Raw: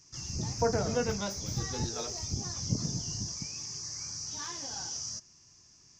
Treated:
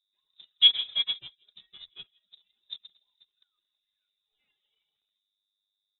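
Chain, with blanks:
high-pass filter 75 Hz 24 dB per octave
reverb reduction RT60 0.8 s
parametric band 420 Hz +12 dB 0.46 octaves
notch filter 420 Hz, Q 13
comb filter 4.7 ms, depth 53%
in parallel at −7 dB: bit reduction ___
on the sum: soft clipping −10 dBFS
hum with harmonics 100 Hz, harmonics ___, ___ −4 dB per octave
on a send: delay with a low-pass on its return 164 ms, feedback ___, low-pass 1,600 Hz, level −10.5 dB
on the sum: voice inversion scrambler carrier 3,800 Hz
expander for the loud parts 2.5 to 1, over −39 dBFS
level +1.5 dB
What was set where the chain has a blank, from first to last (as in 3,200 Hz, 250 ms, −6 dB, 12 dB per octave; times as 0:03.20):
5 bits, 4, −49 dBFS, 43%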